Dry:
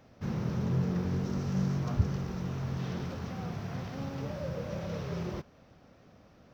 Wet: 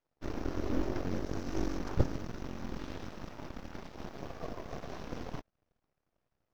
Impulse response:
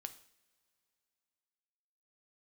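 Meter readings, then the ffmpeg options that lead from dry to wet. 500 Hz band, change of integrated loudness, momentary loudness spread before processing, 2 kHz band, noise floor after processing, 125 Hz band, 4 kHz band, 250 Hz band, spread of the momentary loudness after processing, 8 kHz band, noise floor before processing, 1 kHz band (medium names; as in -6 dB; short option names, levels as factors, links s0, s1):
-1.5 dB, -5.5 dB, 8 LU, -1.5 dB, -85 dBFS, -9.5 dB, -2.0 dB, -4.5 dB, 12 LU, no reading, -59 dBFS, -1.0 dB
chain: -af "asubboost=boost=5:cutoff=68,aeval=exprs='0.224*(cos(1*acos(clip(val(0)/0.224,-1,1)))-cos(1*PI/2))+0.0708*(cos(3*acos(clip(val(0)/0.224,-1,1)))-cos(3*PI/2))+0.0891*(cos(6*acos(clip(val(0)/0.224,-1,1)))-cos(6*PI/2))+0.00158*(cos(7*acos(clip(val(0)/0.224,-1,1)))-cos(7*PI/2))':c=same,volume=0.708"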